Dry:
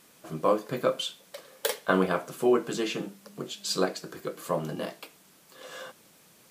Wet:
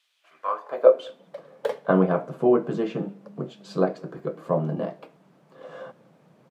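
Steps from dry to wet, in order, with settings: FFT filter 360 Hz 0 dB, 630 Hz +4 dB, 13 kHz -28 dB; high-pass sweep 3.3 kHz -> 140 Hz, 0.17–1.34 s; speakerphone echo 200 ms, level -26 dB; trim +2 dB

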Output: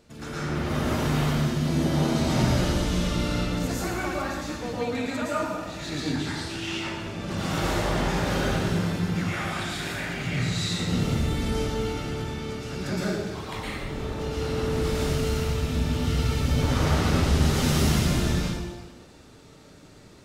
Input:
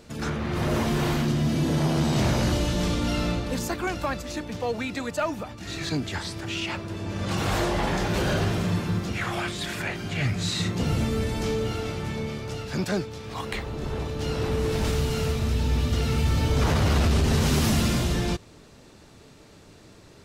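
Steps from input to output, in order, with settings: plate-style reverb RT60 1.3 s, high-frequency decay 0.9×, pre-delay 100 ms, DRR -8 dB; trim -8.5 dB

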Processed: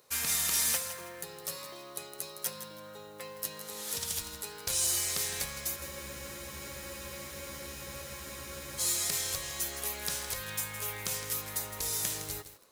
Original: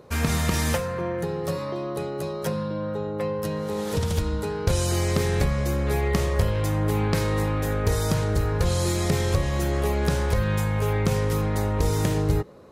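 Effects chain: pre-emphasis filter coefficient 0.97; modulation noise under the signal 15 dB; spectral freeze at 5.78 s, 3.02 s; bit-crushed delay 162 ms, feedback 35%, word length 8-bit, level -10 dB; trim +4 dB

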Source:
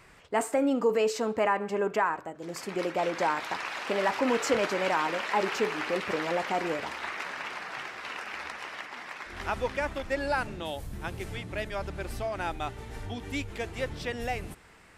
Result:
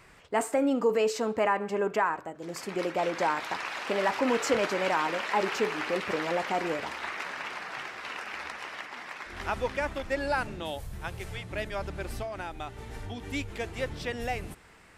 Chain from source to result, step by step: 10.78–11.51 s: peaking EQ 270 Hz -11 dB 0.73 oct; 12.22–13.24 s: compression, threshold -33 dBFS, peak gain reduction 6.5 dB

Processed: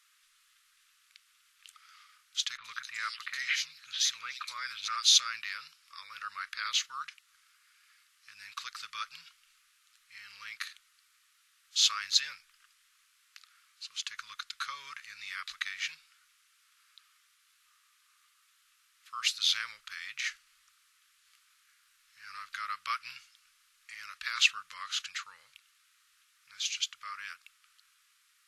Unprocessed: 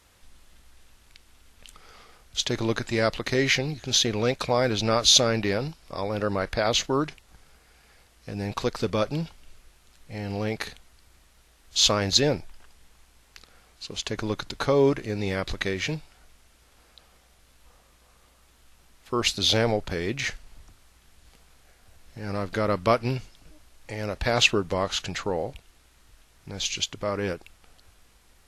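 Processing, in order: elliptic high-pass 1.2 kHz, stop band 40 dB; 2.57–5.03 s: bands offset in time lows, highs 70 ms, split 3.1 kHz; trim -4.5 dB

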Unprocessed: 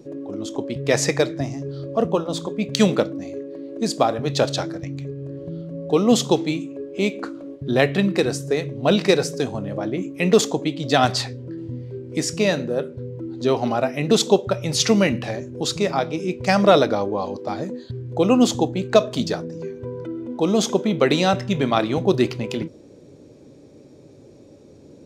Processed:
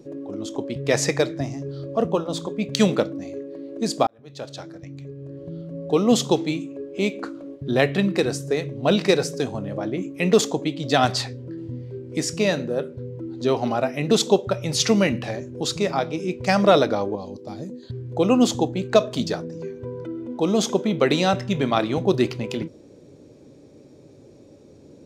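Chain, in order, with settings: 4.07–5.77 s: fade in; 17.15–17.83 s: peaking EQ 1.3 kHz -13 dB 2.9 oct; trim -1.5 dB

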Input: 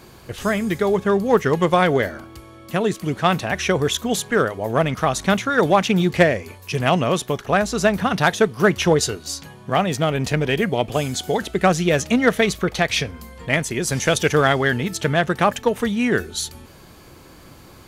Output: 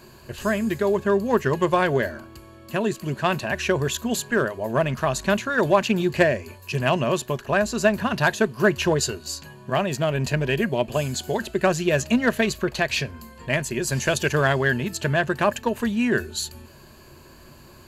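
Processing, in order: rippled EQ curve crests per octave 1.4, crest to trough 8 dB; trim -4 dB

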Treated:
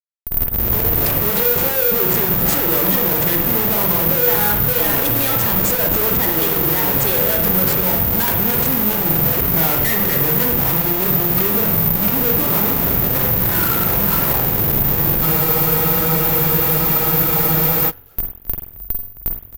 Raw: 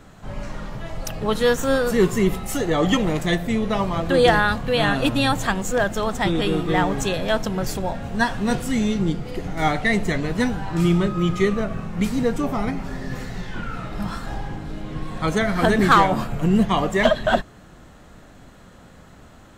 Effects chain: tape start-up on the opening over 1.20 s; high-pass 78 Hz 12 dB/octave; band-stop 5.9 kHz, Q 5.8; comb 2.1 ms, depth 39%; level rider gain up to 10.5 dB; tremolo 2.8 Hz, depth 49%; Schmitt trigger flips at -28.5 dBFS; frequency-shifting echo 266 ms, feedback 34%, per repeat -55 Hz, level -14 dB; on a send at -3 dB: reverberation RT60 0.60 s, pre-delay 43 ms; on the sum: careless resampling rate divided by 3×, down none, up zero stuff; spectral freeze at 15.27 s, 2.62 s; trim -4 dB

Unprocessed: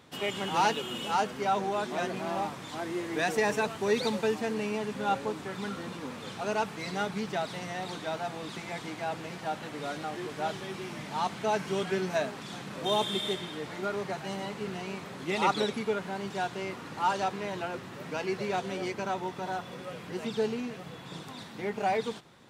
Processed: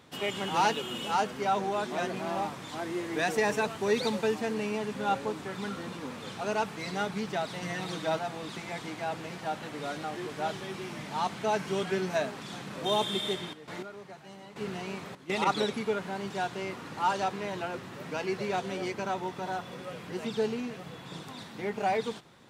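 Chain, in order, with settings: 7.62–8.19 s: comb 6.2 ms, depth 82%; 13.51–15.45 s: trance gate "x.x.....xxxx." 102 bpm -12 dB

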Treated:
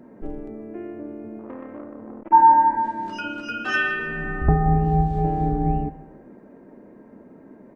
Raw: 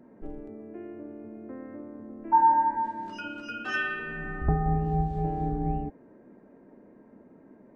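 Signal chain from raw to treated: on a send: feedback delay 156 ms, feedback 35%, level -19 dB; 1.39–2.31 s: on the sum: transformer saturation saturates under 620 Hz; trim +7 dB

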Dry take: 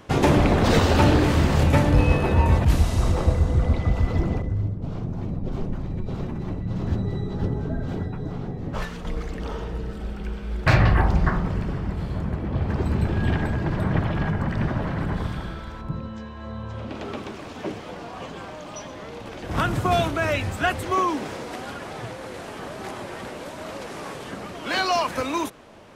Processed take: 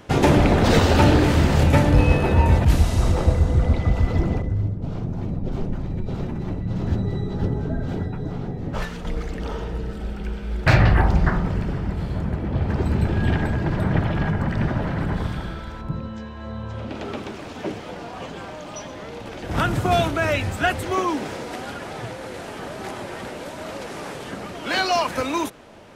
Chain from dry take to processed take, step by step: band-stop 1.1 kHz, Q 15; trim +2 dB

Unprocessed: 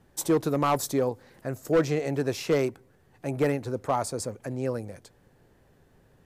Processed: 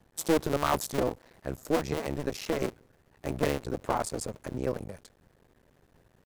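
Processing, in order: cycle switcher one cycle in 2, muted; 1.75–2.60 s: compression, threshold -25 dBFS, peak gain reduction 6 dB

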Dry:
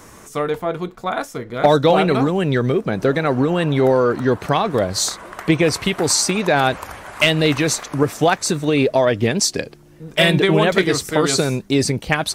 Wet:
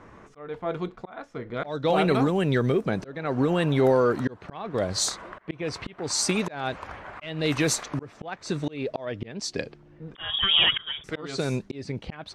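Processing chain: slow attack 420 ms; level-controlled noise filter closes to 2 kHz, open at -14.5 dBFS; 10.15–11.04 s: frequency inversion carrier 3.5 kHz; trim -5 dB

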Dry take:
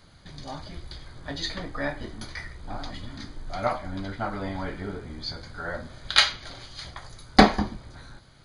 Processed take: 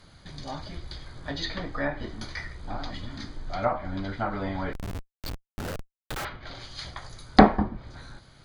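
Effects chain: low-pass that closes with the level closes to 1.4 kHz, closed at -22.5 dBFS; 4.73–6.25 s: Schmitt trigger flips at -30 dBFS; trim +1 dB

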